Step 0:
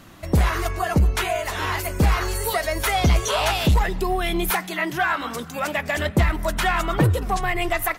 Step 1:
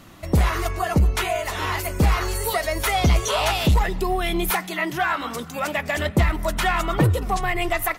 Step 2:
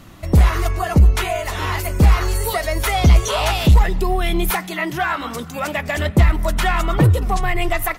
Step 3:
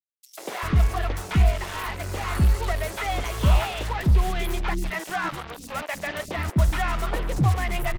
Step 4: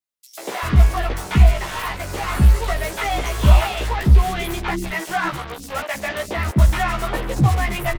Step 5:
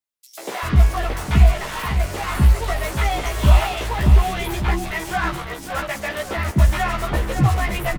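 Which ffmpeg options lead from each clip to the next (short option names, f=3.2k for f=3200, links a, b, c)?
-af "bandreject=f=1.6k:w=16"
-af "lowshelf=f=140:g=7,volume=1.5dB"
-filter_complex "[0:a]acrossover=split=100|4100[a][b][c];[c]acompressor=threshold=-40dB:ratio=6[d];[a][b][d]amix=inputs=3:normalize=0,acrusher=bits=3:mix=0:aa=0.5,acrossover=split=360|4700[e][f][g];[f]adelay=140[h];[e]adelay=390[i];[i][h][g]amix=inputs=3:normalize=0,volume=-7dB"
-filter_complex "[0:a]asplit=2[a][b];[b]adelay=15,volume=-2.5dB[c];[a][c]amix=inputs=2:normalize=0,volume=3dB"
-af "aecho=1:1:553|1106|1659|2212:0.355|0.128|0.046|0.0166,volume=-1dB"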